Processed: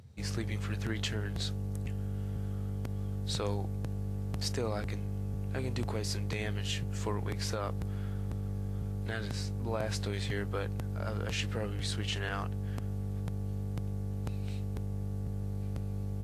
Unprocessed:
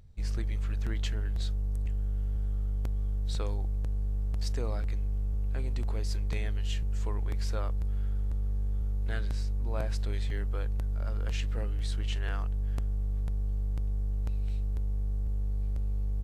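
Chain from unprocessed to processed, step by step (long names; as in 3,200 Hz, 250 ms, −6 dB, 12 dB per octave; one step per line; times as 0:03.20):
high-pass filter 89 Hz 24 dB per octave
brickwall limiter −28.5 dBFS, peak gain reduction 7 dB
level +6.5 dB
Ogg Vorbis 64 kbit/s 32,000 Hz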